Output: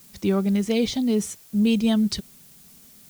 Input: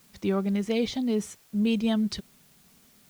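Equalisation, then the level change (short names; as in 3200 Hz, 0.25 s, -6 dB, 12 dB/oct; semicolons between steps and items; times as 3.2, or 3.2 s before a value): low shelf 480 Hz +6 dB; high shelf 4000 Hz +11 dB; 0.0 dB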